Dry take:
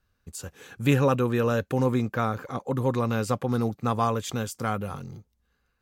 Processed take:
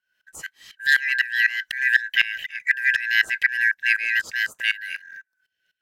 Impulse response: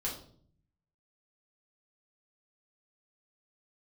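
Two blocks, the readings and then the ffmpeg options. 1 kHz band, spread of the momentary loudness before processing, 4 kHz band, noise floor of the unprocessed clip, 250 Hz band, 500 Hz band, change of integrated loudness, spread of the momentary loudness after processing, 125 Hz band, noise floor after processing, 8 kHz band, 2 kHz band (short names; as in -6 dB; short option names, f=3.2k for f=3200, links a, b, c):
under -20 dB, 17 LU, +13.0 dB, -74 dBFS, under -35 dB, under -30 dB, +5.5 dB, 15 LU, under -35 dB, -80 dBFS, n/a, +20.0 dB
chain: -af "afftfilt=real='real(if(lt(b,272),68*(eq(floor(b/68),0)*3+eq(floor(b/68),1)*0+eq(floor(b/68),2)*1+eq(floor(b/68),3)*2)+mod(b,68),b),0)':imag='imag(if(lt(b,272),68*(eq(floor(b/68),0)*3+eq(floor(b/68),1)*0+eq(floor(b/68),2)*1+eq(floor(b/68),3)*2)+mod(b,68),b),0)':win_size=2048:overlap=0.75,dynaudnorm=f=210:g=13:m=6dB,aeval=exprs='val(0)*pow(10,-20*if(lt(mod(-4*n/s,1),2*abs(-4)/1000),1-mod(-4*n/s,1)/(2*abs(-4)/1000),(mod(-4*n/s,1)-2*abs(-4)/1000)/(1-2*abs(-4)/1000))/20)':c=same,volume=5.5dB"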